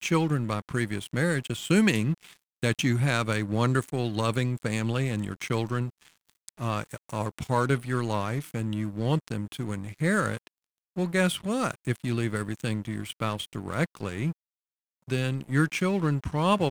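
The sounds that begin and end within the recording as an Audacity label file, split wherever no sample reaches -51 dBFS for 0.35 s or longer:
10.960000	14.330000	sound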